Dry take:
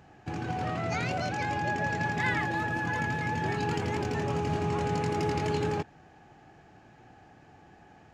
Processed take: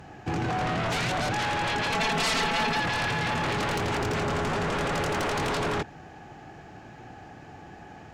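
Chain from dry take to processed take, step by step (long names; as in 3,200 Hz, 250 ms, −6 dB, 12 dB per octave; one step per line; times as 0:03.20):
sine wavefolder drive 14 dB, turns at −16 dBFS
0:01.90–0:02.80: comb filter 4.5 ms, depth 79%
level −8.5 dB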